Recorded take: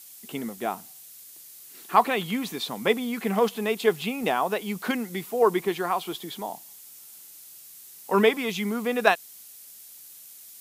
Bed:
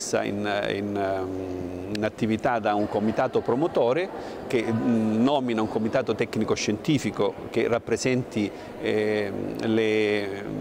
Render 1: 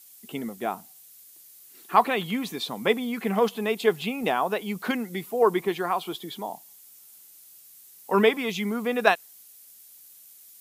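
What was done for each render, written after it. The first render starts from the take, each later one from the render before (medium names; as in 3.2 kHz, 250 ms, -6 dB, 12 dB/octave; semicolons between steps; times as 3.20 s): noise reduction 6 dB, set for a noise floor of -47 dBFS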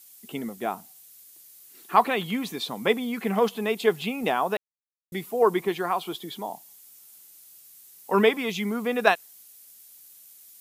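4.57–5.12 s: mute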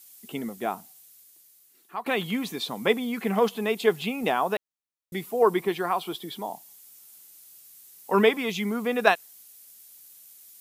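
0.73–2.06 s: fade out linear, to -18.5 dB; 5.43–6.42 s: band-stop 6.7 kHz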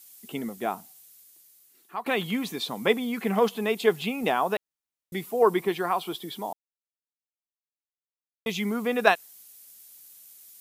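6.53–8.46 s: mute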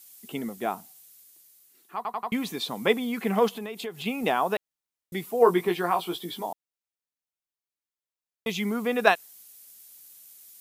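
1.96 s: stutter in place 0.09 s, 4 plays; 3.52–4.06 s: compression, threshold -32 dBFS; 5.39–6.46 s: doubling 17 ms -5.5 dB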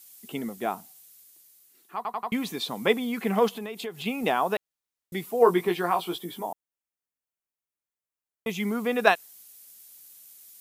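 6.18–8.60 s: peaking EQ 4.2 kHz -8.5 dB 0.92 oct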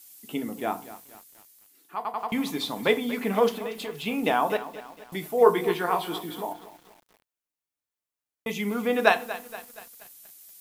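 FDN reverb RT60 0.34 s, low-frequency decay 1.4×, high-frequency decay 0.85×, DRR 7.5 dB; bit-crushed delay 236 ms, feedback 55%, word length 7-bit, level -14.5 dB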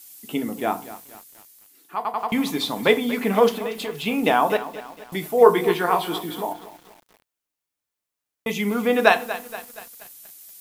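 trim +5 dB; peak limiter -1 dBFS, peak gain reduction 2 dB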